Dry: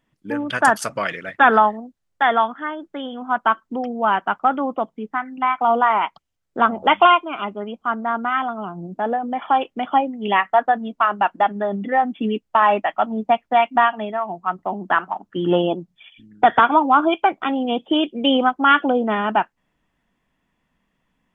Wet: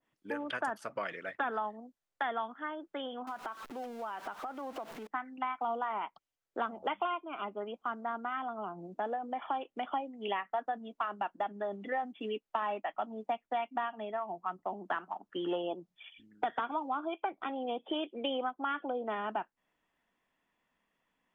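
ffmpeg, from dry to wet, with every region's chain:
-filter_complex "[0:a]asettb=1/sr,asplit=3[a][b][c];[a]atrim=end=3.274[d];[b]atrim=start=3.27:end=5.07,asetpts=PTS-STARTPTS,afade=t=in:d=0.004:c=qsin,afade=t=out:st=1.796:d=0.004:c=qsin,aeval=exprs='val(0)+0.5*0.0299*sgn(val(0))':c=same,acompressor=threshold=-29dB:ratio=8:attack=3.2:release=140:knee=1:detection=peak[e];[c]atrim=start=5.066[f];[d][e]acrossfade=d=0.004:c1=hsin:c2=qsin[g];[g][f]acrossfade=d=0.004:c1=qsin:c2=hsin,asettb=1/sr,asplit=3[h][i][j];[h]atrim=end=16.884[k];[i]atrim=start=16.88:end=19.07,asetpts=PTS-STARTPTS,afade=t=in:d=0.004:c=qsin,afade=t=out:st=2.186:d=0.004:c=qsin,lowpass=f=4.6k:w=0.5412,lowpass=f=4.6k:w=1.3066,bandreject=f=2.9k:w=14,acompressor=mode=upward:threshold=-29dB:ratio=2.5:attack=3.2:release=140:knee=2.83:detection=peak[l];[j]atrim=start=19.066[m];[k][l]acrossfade=d=0.004:c1=hsin:c2=qsin[n];[n][m]acrossfade=d=0.004:c1=qsin:c2=hsin,bass=f=250:g=-13,treble=f=4k:g=-2,acrossover=split=330|3800[o][p][q];[o]acompressor=threshold=-40dB:ratio=4[r];[p]acompressor=threshold=-28dB:ratio=4[s];[q]acompressor=threshold=-50dB:ratio=4[t];[r][s][t]amix=inputs=3:normalize=0,adynamicequalizer=threshold=0.0112:dfrequency=1500:dqfactor=0.7:tfrequency=1500:tqfactor=0.7:attack=5:release=100:ratio=0.375:range=3:mode=cutabove:tftype=highshelf,volume=-6dB"

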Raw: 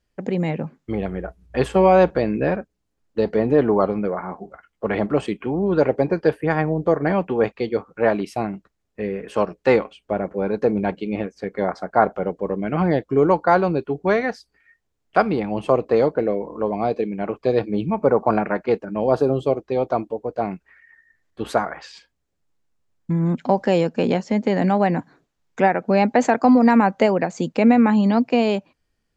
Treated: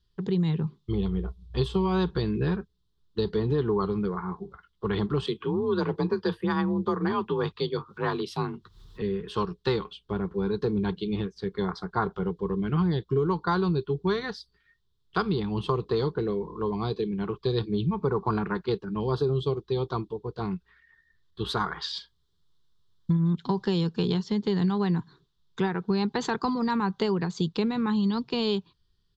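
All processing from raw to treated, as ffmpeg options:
-filter_complex "[0:a]asettb=1/sr,asplit=3[a][b][c];[a]atrim=end=0.644[d];[b]atrim=start=0.64:end=1.86,asetpts=PTS-STARTPTS,afade=t=in:d=0.004:c=qsin,afade=t=out:st=1.216:d=0.004:c=qsin,equalizer=f=1.6k:t=o:w=0.44:g=-11.5,asplit=2[e][f];[f]adelay=15,volume=-13dB[g];[e][g]amix=inputs=2:normalize=0,atrim=end_sample=53802[h];[c]atrim=start=1.856[i];[d][h]acrossfade=d=0.004:c1=hsin:c2=qsin[j];[j][i]acrossfade=d=0.004:c1=qsin:c2=hsin,asettb=1/sr,asplit=3[k][l][m];[k]atrim=end=5.274[n];[l]atrim=start=5.27:end=9.02,asetpts=PTS-STARTPTS,afade=t=in:d=0.004:c=qsin,afade=t=out:st=3.746:d=0.004:c=qsin,afreqshift=37,equalizer=f=1.1k:t=o:w=0.75:g=4,acompressor=mode=upward:threshold=-33dB:ratio=2.5:attack=3.2:release=140:knee=2.83:detection=peak[o];[m]atrim=start=9.016[p];[n][o]acrossfade=d=0.004:c1=hsin:c2=qsin[q];[q][p]acrossfade=d=0.004:c1=qsin:c2=hsin,asettb=1/sr,asplit=3[r][s][t];[r]atrim=end=21.604[u];[s]atrim=start=21.6:end=23.17,asetpts=PTS-STARTPTS,afade=t=in:d=0.004:c=qsin,afade=t=out:st=1.566:d=0.004:c=qsin,lowshelf=f=350:g=-4.5,bandreject=f=2.6k:w=10,acontrast=35[v];[t]atrim=start=23.166[w];[u][v]acrossfade=d=0.004:c1=hsin:c2=qsin[x];[x][w]acrossfade=d=0.004:c1=qsin:c2=hsin,firequalizer=gain_entry='entry(180,0);entry(250,-11);entry(400,-3);entry(580,-28);entry(1000,-5);entry(2300,-17);entry(3500,6);entry(6700,-12)':delay=0.05:min_phase=1,acompressor=threshold=-24dB:ratio=6,equalizer=f=260:t=o:w=0.61:g=-5.5,volume=4dB"

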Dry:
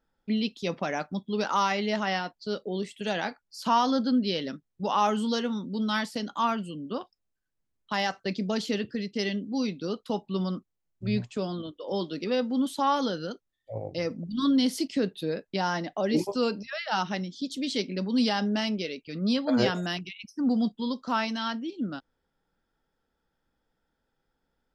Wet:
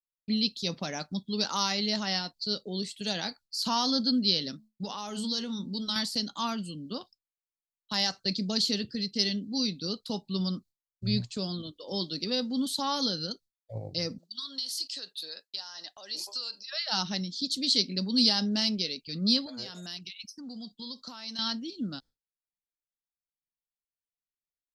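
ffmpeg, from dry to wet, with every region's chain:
-filter_complex "[0:a]asettb=1/sr,asplit=3[a][b][c];[a]atrim=end=4.514[d];[b]atrim=start=4.51:end=5.96,asetpts=PTS-STARTPTS,afade=t=in:d=0.004:c=qsin,afade=t=out:st=1.446:d=0.004:c=qsin,bandreject=f=216.4:t=h:w=4,bandreject=f=432.8:t=h:w=4,bandreject=f=649.2:t=h:w=4,bandreject=f=865.6:t=h:w=4,bandreject=f=1.082k:t=h:w=4,acompressor=threshold=-27dB:ratio=12:attack=3.2:release=140:knee=1:detection=peak[e];[c]atrim=start=5.956[f];[d][e]acrossfade=d=0.004:c1=hsin:c2=qsin[g];[g][f]acrossfade=d=0.004:c1=qsin:c2=hsin,asettb=1/sr,asplit=3[h][i][j];[h]atrim=end=14.184[k];[i]atrim=start=14.18:end=16.72,asetpts=PTS-STARTPTS,afade=t=in:d=0.004:c=qsin,afade=t=out:st=2.536:d=0.004:c=qsin,highpass=1k,bandreject=f=2.2k:w=5,acompressor=threshold=-38dB:ratio=10:attack=3.2:release=140:knee=1:detection=peak[l];[j]atrim=start=16.716[m];[k][l]acrossfade=d=0.004:c1=hsin:c2=qsin[n];[n][m]acrossfade=d=0.004:c1=qsin:c2=hsin,asettb=1/sr,asplit=3[o][p][q];[o]atrim=end=19.464[r];[p]atrim=start=19.46:end=21.39,asetpts=PTS-STARTPTS,afade=t=in:d=0.004:c=qsin,afade=t=out:st=1.926:d=0.004:c=qsin,lowshelf=f=260:g=-9,acompressor=threshold=-38dB:ratio=4:attack=3.2:release=140:knee=1:detection=peak[s];[q]atrim=start=21.386[t];[r][s]acrossfade=d=0.004:c1=hsin:c2=qsin[u];[u][t]acrossfade=d=0.004:c1=qsin:c2=hsin,equalizer=f=4.3k:t=o:w=0.52:g=13.5,agate=range=-33dB:threshold=-45dB:ratio=3:detection=peak,bass=f=250:g=9,treble=f=4k:g=13,volume=-7.5dB"

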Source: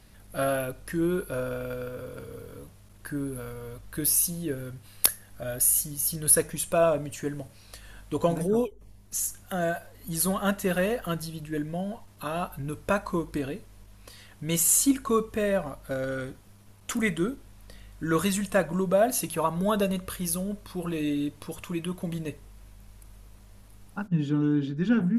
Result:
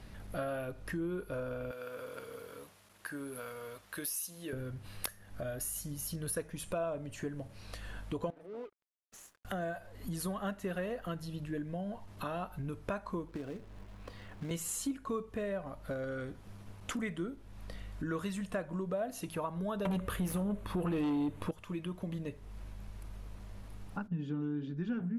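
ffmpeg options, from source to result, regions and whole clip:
-filter_complex "[0:a]asettb=1/sr,asplit=3[a][b][c];[a]atrim=end=1.714[d];[b]atrim=start=1.71:end=4.53,asetpts=PTS-STARTPTS,afade=t=in:d=0.004:c=qsin,afade=t=out:st=2.816:d=0.004:c=qsin,highpass=f=1.1k:p=1,highshelf=f=9k:g=5.5[e];[c]atrim=start=4.526[f];[d][e]acrossfade=d=0.004:c1=hsin:c2=qsin[g];[g][f]acrossfade=d=0.004:c1=qsin:c2=hsin,asettb=1/sr,asplit=3[h][i][j];[h]atrim=end=8.304[k];[i]atrim=start=8.3:end=9.45,asetpts=PTS-STARTPTS,afade=t=in:d=0.004:c=qsin,afade=t=out:st=1.146:d=0.004:c=qsin,acrossover=split=260 2500:gain=0.0891 1 0.251[l][m][n];[l][m][n]amix=inputs=3:normalize=0,acompressor=threshold=-45dB:ratio=2.5:attack=3.2:release=140:knee=1:detection=peak,aeval=exprs='sgn(val(0))*max(abs(val(0))-0.00224,0)':c=same[o];[j]atrim=start=9.446[p];[k][o]acrossfade=d=0.004:c1=hsin:c2=qsin[q];[q][p]acrossfade=d=0.004:c1=qsin:c2=hsin,asettb=1/sr,asplit=3[r][s][t];[r]atrim=end=13.284[u];[s]atrim=start=13.28:end=14.51,asetpts=PTS-STARTPTS,afade=t=in:d=0.004:c=qsin,afade=t=out:st=1.226:d=0.004:c=qsin,lowpass=f=2.3k:p=1,acrossover=split=140|370|1200[v][w][x][y];[v]acompressor=threshold=-53dB:ratio=3[z];[w]acompressor=threshold=-40dB:ratio=3[aa];[x]acompressor=threshold=-42dB:ratio=3[ab];[y]acompressor=threshold=-57dB:ratio=3[ac];[z][aa][ab][ac]amix=inputs=4:normalize=0,acrusher=bits=3:mode=log:mix=0:aa=0.000001[ad];[t]atrim=start=14.506[ae];[u][ad]acrossfade=d=0.004:c1=hsin:c2=qsin[af];[af][ae]acrossfade=d=0.004:c1=qsin:c2=hsin,asettb=1/sr,asplit=3[ag][ah][ai];[ag]atrim=end=19.854[aj];[ah]atrim=start=19.85:end=21.51,asetpts=PTS-STARTPTS,afade=t=in:d=0.004:c=qsin,afade=t=out:st=1.656:d=0.004:c=qsin,equalizer=f=5.1k:w=1.8:g=-10,aeval=exprs='0.2*sin(PI/2*3.55*val(0)/0.2)':c=same[ak];[ai]atrim=start=21.506[al];[aj][ak]acrossfade=d=0.004:c1=hsin:c2=qsin[am];[am][al]acrossfade=d=0.004:c1=qsin:c2=hsin,lowpass=f=2.8k:p=1,acompressor=threshold=-44dB:ratio=3,volume=4.5dB"

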